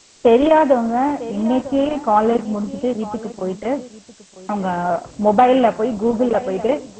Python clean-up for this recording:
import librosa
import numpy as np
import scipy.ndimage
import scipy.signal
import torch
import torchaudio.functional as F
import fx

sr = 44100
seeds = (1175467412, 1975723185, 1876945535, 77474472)

y = fx.noise_reduce(x, sr, print_start_s=3.88, print_end_s=4.38, reduce_db=19.0)
y = fx.fix_echo_inverse(y, sr, delay_ms=950, level_db=-17.0)